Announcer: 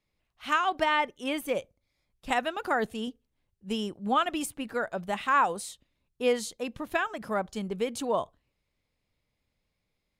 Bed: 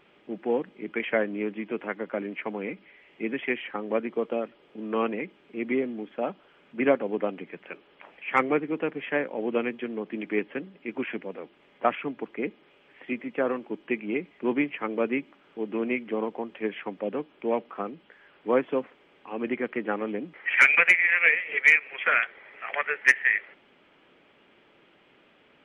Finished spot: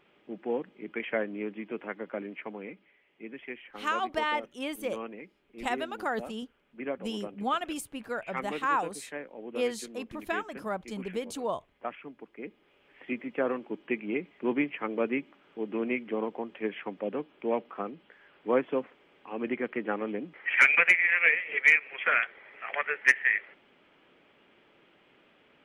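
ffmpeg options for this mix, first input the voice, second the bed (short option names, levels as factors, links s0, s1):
-filter_complex "[0:a]adelay=3350,volume=0.631[s0];[1:a]volume=1.78,afade=t=out:st=2.18:d=0.86:silence=0.421697,afade=t=in:st=12.35:d=0.74:silence=0.316228[s1];[s0][s1]amix=inputs=2:normalize=0"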